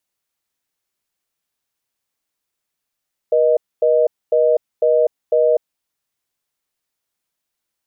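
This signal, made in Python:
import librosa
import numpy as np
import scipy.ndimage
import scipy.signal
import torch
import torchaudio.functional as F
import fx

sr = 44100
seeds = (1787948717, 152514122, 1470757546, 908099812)

y = fx.call_progress(sr, length_s=2.38, kind='reorder tone', level_db=-14.0)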